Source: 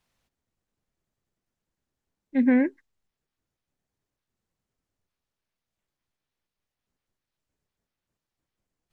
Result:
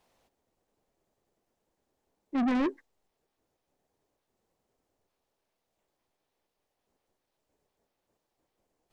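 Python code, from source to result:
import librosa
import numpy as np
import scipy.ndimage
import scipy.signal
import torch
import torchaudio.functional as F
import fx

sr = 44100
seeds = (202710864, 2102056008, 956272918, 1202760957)

y = fx.curve_eq(x, sr, hz=(150.0, 440.0, 810.0, 1400.0), db=(0, 12, 12, 3))
y = 10.0 ** (-25.0 / 20.0) * np.tanh(y / 10.0 ** (-25.0 / 20.0))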